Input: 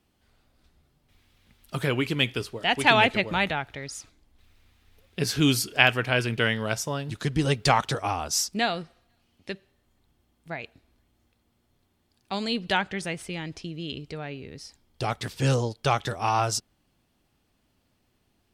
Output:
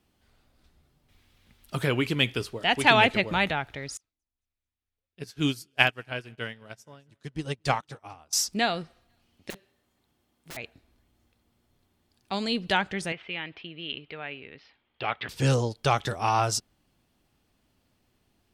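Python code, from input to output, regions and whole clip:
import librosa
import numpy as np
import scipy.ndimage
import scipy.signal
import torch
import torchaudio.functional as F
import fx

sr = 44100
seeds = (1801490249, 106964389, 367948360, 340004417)

y = fx.chain(x, sr, fx.echo_feedback(ms=222, feedback_pct=55, wet_db=-21),
    fx.upward_expand(threshold_db=-36.0, expansion=2.5), at=(3.97, 8.33))
y = fx.chain(y, sr, fx.highpass(hz=190.0, slope=6),
    fx.overflow_wrap(gain_db=36.0), at=(9.5, 10.57))
y = fx.chain(y, sr, fx.steep_lowpass(hz=3100.0, slope=36),
    fx.tilt_eq(slope=4.0), at=(13.12, 15.29))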